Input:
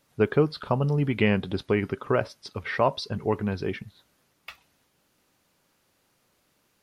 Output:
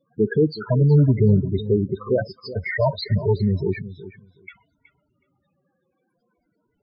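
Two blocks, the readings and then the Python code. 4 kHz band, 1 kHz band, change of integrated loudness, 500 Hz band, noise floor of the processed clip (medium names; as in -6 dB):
+0.5 dB, -4.0 dB, +5.5 dB, +4.0 dB, -73 dBFS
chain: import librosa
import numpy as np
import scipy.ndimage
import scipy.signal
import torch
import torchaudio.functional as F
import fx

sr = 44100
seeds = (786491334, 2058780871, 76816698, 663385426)

p1 = fx.spec_ripple(x, sr, per_octave=1.8, drift_hz=-0.51, depth_db=9)
p2 = fx.level_steps(p1, sr, step_db=11)
p3 = p1 + F.gain(torch.from_numpy(p2), -1.0).numpy()
p4 = np.clip(p3, -10.0 ** (-15.5 / 20.0), 10.0 ** (-15.5 / 20.0))
p5 = fx.dynamic_eq(p4, sr, hz=110.0, q=0.86, threshold_db=-35.0, ratio=4.0, max_db=4)
p6 = fx.spec_topn(p5, sr, count=8)
p7 = fx.echo_feedback(p6, sr, ms=371, feedback_pct=15, wet_db=-15)
y = F.gain(torch.from_numpy(p7), 2.5).numpy()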